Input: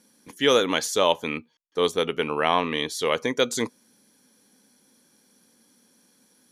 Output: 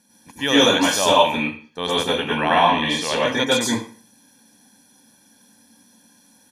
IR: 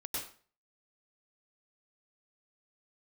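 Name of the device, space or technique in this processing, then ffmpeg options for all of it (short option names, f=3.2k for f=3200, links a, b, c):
microphone above a desk: -filter_complex "[0:a]aecho=1:1:1.2:0.62[a];[1:a]atrim=start_sample=2205[b];[a][b]afir=irnorm=-1:irlink=0,asettb=1/sr,asplit=3[c][d][e];[c]atrim=end=2.704[f];[d]atrim=start=2.7:end=3.26,asetpts=PTS-STARTPTS,afade=t=in:d=0.004:c=qsin,afade=t=out:st=0.556:d=0.004:c=qsin,lowpass=8.9k[g];[e]atrim=start=3.256[h];[f][g]acrossfade=d=0.004:c1=hsin:c2=qsin[i];[i][h]acrossfade=d=0.004:c1=qsin:c2=hsin,volume=4dB"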